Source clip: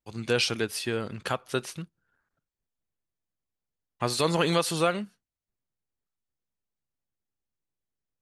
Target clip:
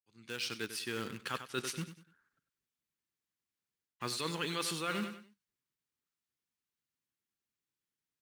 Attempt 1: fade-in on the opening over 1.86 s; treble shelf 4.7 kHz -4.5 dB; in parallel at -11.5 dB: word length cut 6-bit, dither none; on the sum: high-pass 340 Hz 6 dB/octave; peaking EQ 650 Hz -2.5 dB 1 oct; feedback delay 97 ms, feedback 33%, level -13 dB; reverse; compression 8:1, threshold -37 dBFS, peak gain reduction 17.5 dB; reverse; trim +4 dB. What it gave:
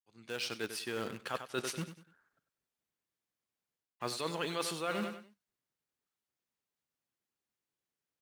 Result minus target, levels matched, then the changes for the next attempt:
500 Hz band +3.5 dB
change: peaking EQ 650 Hz -14 dB 1 oct

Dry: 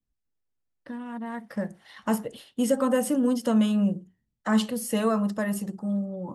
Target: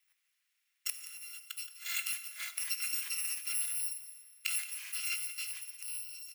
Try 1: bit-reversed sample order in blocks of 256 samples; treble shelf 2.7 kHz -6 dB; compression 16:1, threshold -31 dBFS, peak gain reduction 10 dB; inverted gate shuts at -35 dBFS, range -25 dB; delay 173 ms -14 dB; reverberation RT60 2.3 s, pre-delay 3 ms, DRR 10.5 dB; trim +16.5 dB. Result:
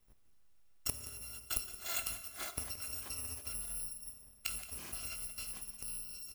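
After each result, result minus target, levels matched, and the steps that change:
compression: peak gain reduction +10 dB; 2 kHz band -3.5 dB
remove: compression 16:1, threshold -31 dBFS, peak gain reduction 10 dB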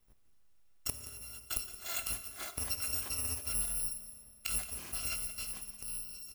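2 kHz band -5.0 dB
add after bit-reversed sample order: resonant high-pass 2.1 kHz, resonance Q 2.5

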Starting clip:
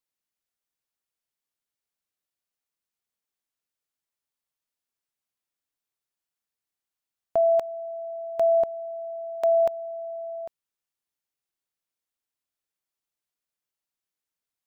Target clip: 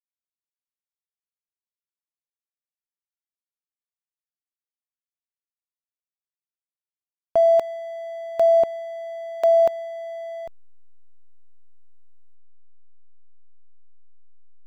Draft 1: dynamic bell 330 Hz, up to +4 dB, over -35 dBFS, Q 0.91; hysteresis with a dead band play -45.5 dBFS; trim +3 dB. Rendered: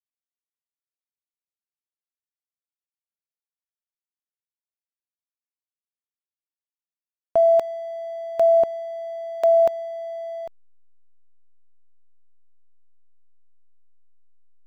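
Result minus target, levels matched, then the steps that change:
hysteresis with a dead band: distortion -9 dB
change: hysteresis with a dead band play -37 dBFS

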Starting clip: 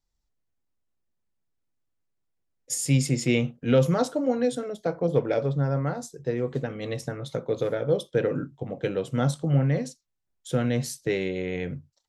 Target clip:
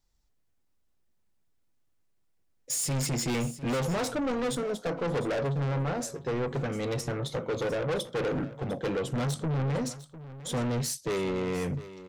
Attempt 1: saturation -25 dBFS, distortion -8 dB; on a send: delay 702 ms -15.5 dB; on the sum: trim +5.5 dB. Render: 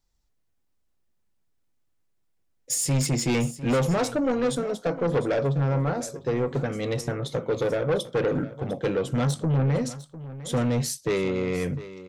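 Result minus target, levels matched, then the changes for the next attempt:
saturation: distortion -4 dB
change: saturation -32.5 dBFS, distortion -4 dB

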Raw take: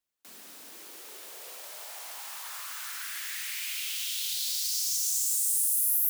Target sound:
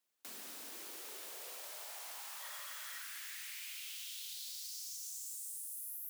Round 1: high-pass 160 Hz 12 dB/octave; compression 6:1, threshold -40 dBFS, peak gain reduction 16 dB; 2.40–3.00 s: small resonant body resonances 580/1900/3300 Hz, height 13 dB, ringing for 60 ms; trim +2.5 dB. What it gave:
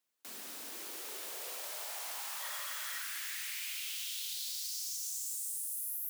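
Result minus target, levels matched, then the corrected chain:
compression: peak gain reduction -6 dB
high-pass 160 Hz 12 dB/octave; compression 6:1, threshold -47.5 dBFS, peak gain reduction 22.5 dB; 2.40–3.00 s: small resonant body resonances 580/1900/3300 Hz, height 13 dB, ringing for 60 ms; trim +2.5 dB

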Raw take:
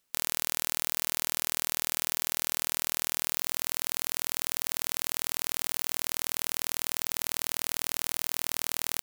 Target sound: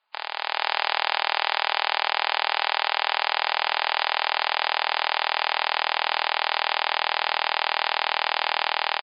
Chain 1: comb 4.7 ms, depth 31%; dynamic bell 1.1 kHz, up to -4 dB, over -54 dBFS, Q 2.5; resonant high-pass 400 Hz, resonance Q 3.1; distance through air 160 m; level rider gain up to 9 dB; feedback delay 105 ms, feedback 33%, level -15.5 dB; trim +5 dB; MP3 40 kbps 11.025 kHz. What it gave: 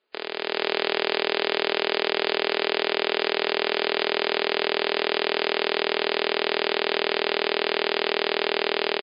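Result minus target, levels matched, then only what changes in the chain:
500 Hz band +10.0 dB
change: resonant high-pass 850 Hz, resonance Q 3.1

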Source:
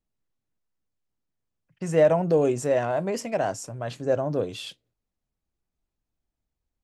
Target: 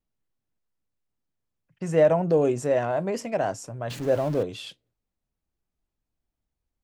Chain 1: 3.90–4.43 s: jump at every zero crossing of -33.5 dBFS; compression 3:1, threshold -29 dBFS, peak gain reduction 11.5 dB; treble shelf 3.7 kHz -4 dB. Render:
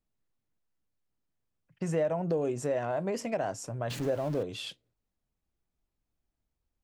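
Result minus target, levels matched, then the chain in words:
compression: peak gain reduction +11.5 dB
3.90–4.43 s: jump at every zero crossing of -33.5 dBFS; treble shelf 3.7 kHz -4 dB

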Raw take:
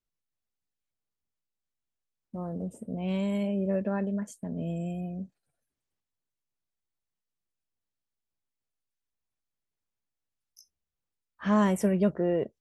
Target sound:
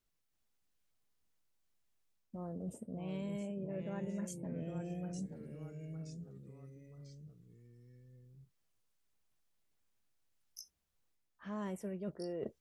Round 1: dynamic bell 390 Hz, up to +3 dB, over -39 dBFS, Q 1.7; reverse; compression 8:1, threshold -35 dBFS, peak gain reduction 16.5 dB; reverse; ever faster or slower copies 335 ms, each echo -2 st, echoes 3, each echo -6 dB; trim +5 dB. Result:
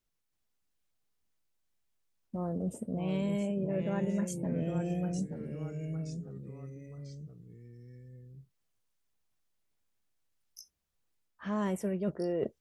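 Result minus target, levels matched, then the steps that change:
compression: peak gain reduction -9 dB
change: compression 8:1, threshold -45 dBFS, peak gain reduction 25 dB

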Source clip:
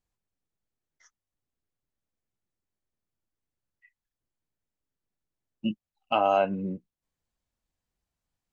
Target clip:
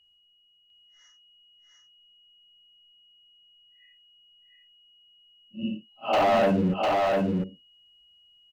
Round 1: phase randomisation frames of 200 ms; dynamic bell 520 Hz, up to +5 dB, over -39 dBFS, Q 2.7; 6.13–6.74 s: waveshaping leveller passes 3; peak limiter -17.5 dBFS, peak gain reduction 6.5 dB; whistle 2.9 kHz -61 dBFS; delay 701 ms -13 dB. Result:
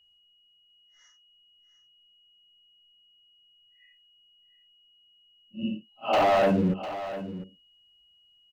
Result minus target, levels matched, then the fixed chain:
echo-to-direct -10.5 dB
phase randomisation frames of 200 ms; dynamic bell 520 Hz, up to +5 dB, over -39 dBFS, Q 2.7; 6.13–6.74 s: waveshaping leveller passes 3; peak limiter -17.5 dBFS, peak gain reduction 6.5 dB; whistle 2.9 kHz -61 dBFS; delay 701 ms -2.5 dB

